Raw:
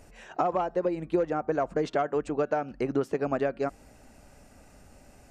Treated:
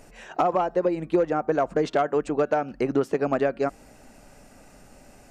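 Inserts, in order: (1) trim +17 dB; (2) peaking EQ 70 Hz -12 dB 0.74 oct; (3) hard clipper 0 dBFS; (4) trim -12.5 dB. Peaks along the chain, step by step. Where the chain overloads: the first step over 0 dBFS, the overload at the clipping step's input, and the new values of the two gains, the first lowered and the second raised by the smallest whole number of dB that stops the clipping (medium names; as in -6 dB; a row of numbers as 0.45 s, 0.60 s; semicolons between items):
+3.5 dBFS, +3.5 dBFS, 0.0 dBFS, -12.5 dBFS; step 1, 3.5 dB; step 1 +13 dB, step 4 -8.5 dB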